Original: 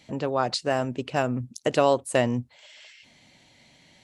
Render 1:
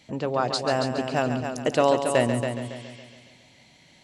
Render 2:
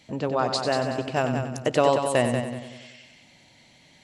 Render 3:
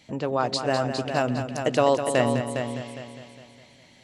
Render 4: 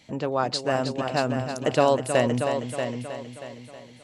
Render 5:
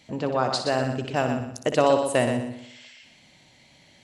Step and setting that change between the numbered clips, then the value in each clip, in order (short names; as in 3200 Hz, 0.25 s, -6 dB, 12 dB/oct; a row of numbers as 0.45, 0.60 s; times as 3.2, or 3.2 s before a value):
multi-head echo, time: 139, 94, 204, 317, 61 ms